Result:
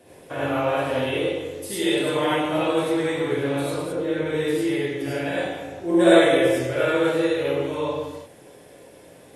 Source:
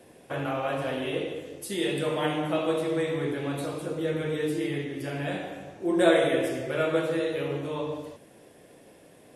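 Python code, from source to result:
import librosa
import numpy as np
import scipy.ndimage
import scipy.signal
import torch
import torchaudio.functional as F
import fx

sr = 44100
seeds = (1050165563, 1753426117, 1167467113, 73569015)

y = fx.high_shelf(x, sr, hz=3700.0, db=-9.5, at=(3.82, 4.26))
y = fx.rev_gated(y, sr, seeds[0], gate_ms=120, shape='rising', drr_db=-6.5)
y = y * librosa.db_to_amplitude(-1.0)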